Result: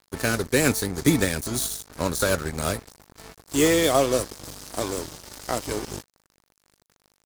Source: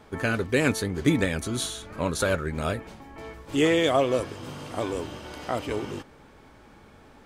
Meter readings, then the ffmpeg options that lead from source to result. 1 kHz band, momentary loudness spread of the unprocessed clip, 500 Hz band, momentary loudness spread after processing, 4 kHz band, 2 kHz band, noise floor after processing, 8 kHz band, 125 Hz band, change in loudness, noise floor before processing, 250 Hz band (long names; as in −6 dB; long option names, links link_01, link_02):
+1.5 dB, 16 LU, +1.5 dB, 15 LU, +3.0 dB, +1.0 dB, −73 dBFS, +9.0 dB, +1.0 dB, +2.5 dB, −52 dBFS, +1.5 dB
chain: -filter_complex "[0:a]acrossover=split=360|2900[link_01][link_02][link_03];[link_03]asoftclip=type=tanh:threshold=-35dB[link_04];[link_01][link_02][link_04]amix=inputs=3:normalize=0,aeval=exprs='val(0)+0.00891*(sin(2*PI*50*n/s)+sin(2*PI*2*50*n/s)/2+sin(2*PI*3*50*n/s)/3+sin(2*PI*4*50*n/s)/4+sin(2*PI*5*50*n/s)/5)':channel_layout=same,aeval=exprs='sgn(val(0))*max(abs(val(0))-0.0158,0)':channel_layout=same,aexciter=amount=5.5:drive=2.6:freq=4200,volume=3dB"